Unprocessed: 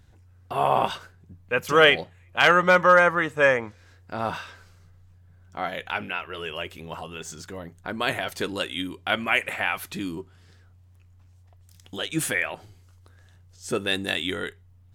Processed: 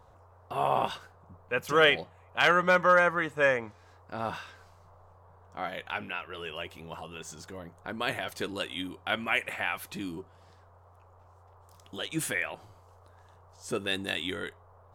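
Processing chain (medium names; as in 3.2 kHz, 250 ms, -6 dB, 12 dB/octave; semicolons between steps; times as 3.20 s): band noise 410–1200 Hz -55 dBFS; trim -5.5 dB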